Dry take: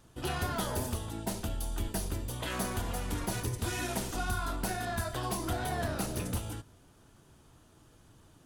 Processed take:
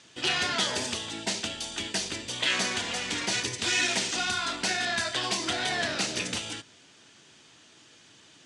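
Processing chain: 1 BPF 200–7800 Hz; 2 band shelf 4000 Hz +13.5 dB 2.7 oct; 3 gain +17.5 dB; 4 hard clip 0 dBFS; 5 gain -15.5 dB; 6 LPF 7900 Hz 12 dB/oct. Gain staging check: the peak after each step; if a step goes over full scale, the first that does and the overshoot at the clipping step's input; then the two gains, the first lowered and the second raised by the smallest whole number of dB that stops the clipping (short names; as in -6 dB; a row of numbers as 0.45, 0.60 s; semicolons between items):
-21.5, -12.5, +5.0, 0.0, -15.5, -14.5 dBFS; step 3, 5.0 dB; step 3 +12.5 dB, step 5 -10.5 dB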